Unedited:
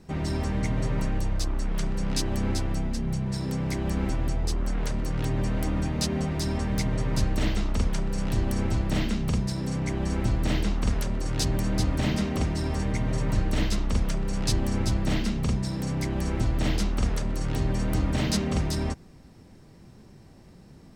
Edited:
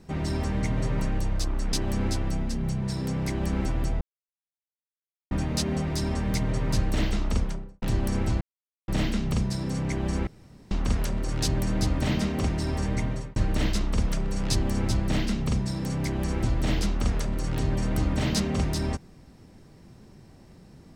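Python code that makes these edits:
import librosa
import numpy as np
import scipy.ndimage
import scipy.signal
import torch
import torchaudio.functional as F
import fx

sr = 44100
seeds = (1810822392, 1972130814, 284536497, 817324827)

y = fx.studio_fade_out(x, sr, start_s=7.76, length_s=0.5)
y = fx.edit(y, sr, fx.cut(start_s=1.73, length_s=0.44),
    fx.silence(start_s=4.45, length_s=1.3),
    fx.insert_silence(at_s=8.85, length_s=0.47),
    fx.room_tone_fill(start_s=10.24, length_s=0.44),
    fx.fade_out_span(start_s=13.0, length_s=0.33), tone=tone)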